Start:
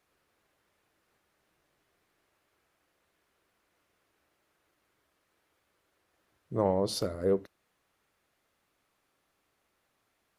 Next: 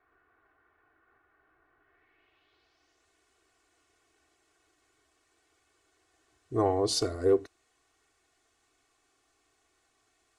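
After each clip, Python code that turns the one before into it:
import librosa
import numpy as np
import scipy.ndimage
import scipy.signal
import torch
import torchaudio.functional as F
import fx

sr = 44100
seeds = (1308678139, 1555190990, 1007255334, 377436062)

y = x + 0.99 * np.pad(x, (int(2.7 * sr / 1000.0), 0))[:len(x)]
y = fx.filter_sweep_lowpass(y, sr, from_hz=1500.0, to_hz=7800.0, start_s=1.81, end_s=3.09, q=2.5)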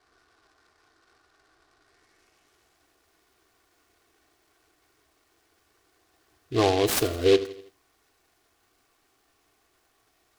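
y = fx.echo_feedback(x, sr, ms=82, feedback_pct=50, wet_db=-17.0)
y = fx.noise_mod_delay(y, sr, seeds[0], noise_hz=2900.0, depth_ms=0.072)
y = y * 10.0 ** (4.5 / 20.0)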